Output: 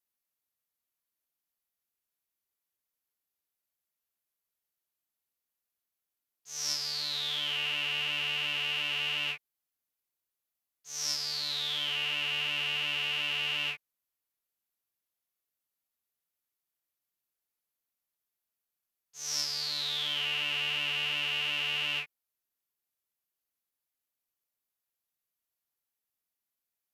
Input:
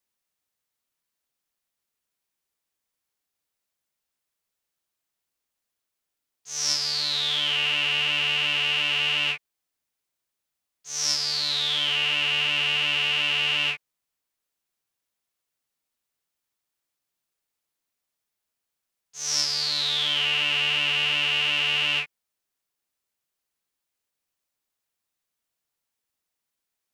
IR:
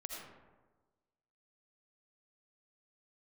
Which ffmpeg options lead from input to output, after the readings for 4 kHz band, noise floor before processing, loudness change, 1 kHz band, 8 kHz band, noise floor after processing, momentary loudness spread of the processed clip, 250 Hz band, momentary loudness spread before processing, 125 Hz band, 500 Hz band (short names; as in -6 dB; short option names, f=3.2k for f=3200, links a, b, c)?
-8.0 dB, -84 dBFS, -8.0 dB, -8.0 dB, -7.5 dB, under -85 dBFS, 5 LU, -8.0 dB, 6 LU, -8.0 dB, -8.0 dB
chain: -af "equalizer=f=12k:t=o:w=0.21:g=13,volume=-8dB"